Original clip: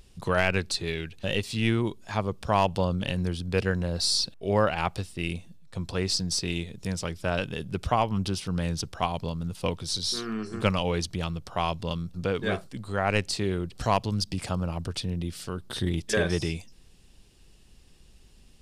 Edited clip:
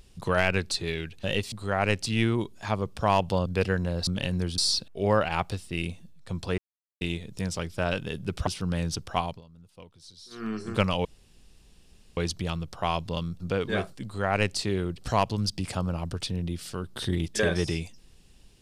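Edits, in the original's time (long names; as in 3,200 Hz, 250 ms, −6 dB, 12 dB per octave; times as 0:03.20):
0:02.92–0:03.43: move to 0:04.04
0:06.04–0:06.47: silence
0:07.93–0:08.33: remove
0:09.10–0:10.33: duck −20 dB, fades 0.17 s
0:10.91: splice in room tone 1.12 s
0:12.78–0:13.32: duplicate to 0:01.52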